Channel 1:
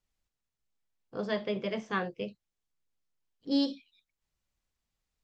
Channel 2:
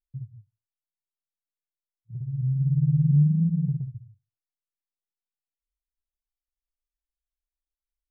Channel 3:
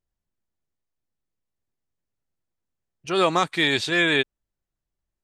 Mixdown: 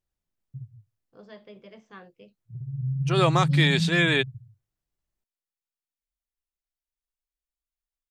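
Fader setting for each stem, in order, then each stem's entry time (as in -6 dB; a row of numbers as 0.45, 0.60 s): -14.5, -3.0, -2.0 dB; 0.00, 0.40, 0.00 s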